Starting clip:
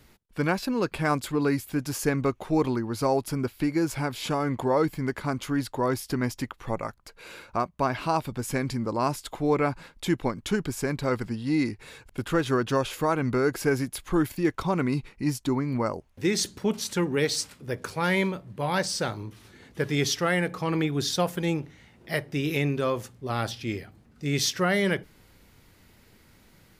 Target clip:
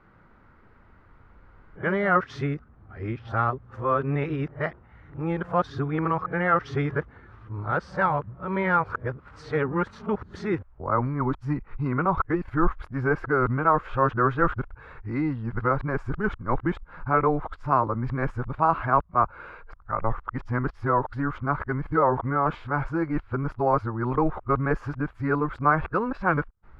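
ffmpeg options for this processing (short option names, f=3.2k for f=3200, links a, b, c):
-af "areverse,asubboost=boost=4.5:cutoff=94,lowpass=f=1.3k:t=q:w=3"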